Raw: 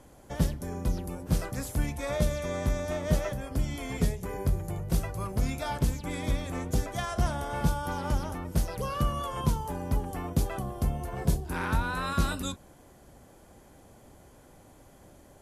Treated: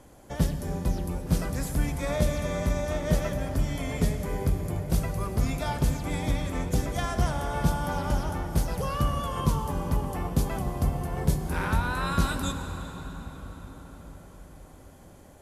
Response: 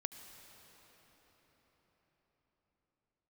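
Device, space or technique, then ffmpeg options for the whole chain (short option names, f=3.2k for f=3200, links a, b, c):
cathedral: -filter_complex "[1:a]atrim=start_sample=2205[a];[0:a][a]afir=irnorm=-1:irlink=0,volume=4dB"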